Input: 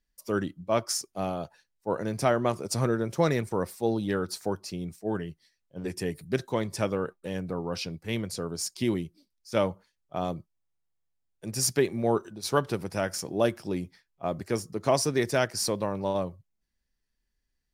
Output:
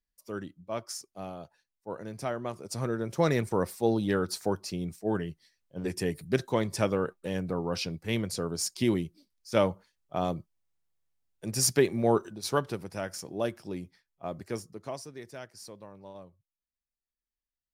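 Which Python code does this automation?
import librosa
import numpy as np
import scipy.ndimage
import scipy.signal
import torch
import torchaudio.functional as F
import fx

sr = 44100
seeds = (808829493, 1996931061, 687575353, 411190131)

y = fx.gain(x, sr, db=fx.line((2.53, -9.0), (3.43, 1.0), (12.26, 1.0), (12.86, -6.0), (14.58, -6.0), (15.08, -18.0)))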